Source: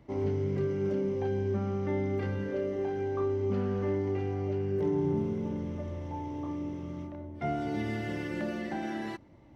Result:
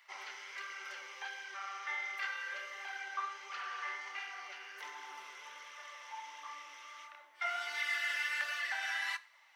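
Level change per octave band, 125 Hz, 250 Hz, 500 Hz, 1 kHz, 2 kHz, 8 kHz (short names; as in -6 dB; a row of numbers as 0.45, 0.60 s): under -40 dB, under -40 dB, -26.5 dB, -2.0 dB, +8.5 dB, n/a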